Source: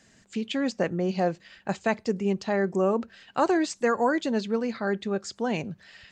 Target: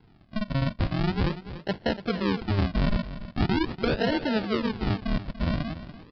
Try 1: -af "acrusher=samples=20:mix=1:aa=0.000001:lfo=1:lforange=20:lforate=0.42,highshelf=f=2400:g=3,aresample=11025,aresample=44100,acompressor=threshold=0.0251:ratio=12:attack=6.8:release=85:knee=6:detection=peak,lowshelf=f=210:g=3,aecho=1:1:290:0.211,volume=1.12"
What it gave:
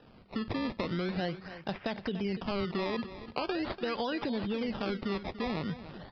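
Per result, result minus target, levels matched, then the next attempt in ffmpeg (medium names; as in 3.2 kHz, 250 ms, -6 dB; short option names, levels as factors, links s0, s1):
decimation with a swept rate: distortion -20 dB; compression: peak gain reduction +8 dB
-af "acrusher=samples=72:mix=1:aa=0.000001:lfo=1:lforange=72:lforate=0.42,highshelf=f=2400:g=3,aresample=11025,aresample=44100,acompressor=threshold=0.0251:ratio=12:attack=6.8:release=85:knee=6:detection=peak,lowshelf=f=210:g=3,aecho=1:1:290:0.211,volume=1.12"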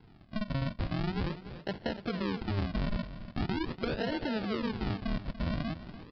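compression: peak gain reduction +9 dB
-af "acrusher=samples=72:mix=1:aa=0.000001:lfo=1:lforange=72:lforate=0.42,highshelf=f=2400:g=3,aresample=11025,aresample=44100,acompressor=threshold=0.0794:ratio=12:attack=6.8:release=85:knee=6:detection=peak,lowshelf=f=210:g=3,aecho=1:1:290:0.211,volume=1.12"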